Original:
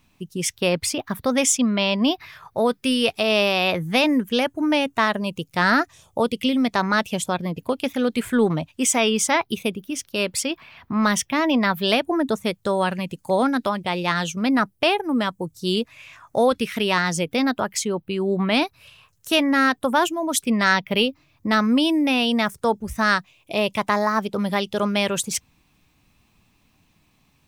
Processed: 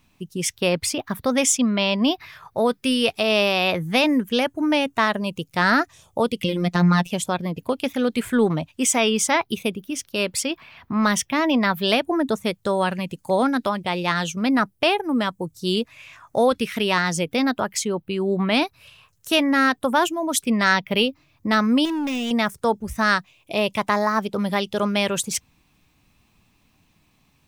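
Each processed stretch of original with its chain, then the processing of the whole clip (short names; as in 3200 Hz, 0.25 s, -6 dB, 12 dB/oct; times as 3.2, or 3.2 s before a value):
6.44–7.1 bell 140 Hz +14.5 dB 1.7 oct + robotiser 176 Hz
21.85–22.31 de-esser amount 70% + bell 830 Hz -11.5 dB 0.61 oct + hard clip -23 dBFS
whole clip: dry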